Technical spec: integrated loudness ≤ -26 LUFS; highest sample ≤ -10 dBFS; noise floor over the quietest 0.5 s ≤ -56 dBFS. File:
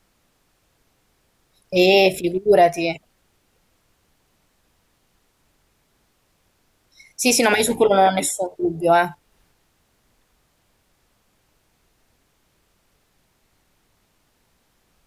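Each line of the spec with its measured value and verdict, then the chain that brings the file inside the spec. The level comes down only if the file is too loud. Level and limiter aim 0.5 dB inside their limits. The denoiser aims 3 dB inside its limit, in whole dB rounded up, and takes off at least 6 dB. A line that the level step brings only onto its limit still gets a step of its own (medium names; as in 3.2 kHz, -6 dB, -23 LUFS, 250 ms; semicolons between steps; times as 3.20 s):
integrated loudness -18.0 LUFS: fail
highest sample -5.5 dBFS: fail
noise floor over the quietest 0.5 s -65 dBFS: pass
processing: trim -8.5 dB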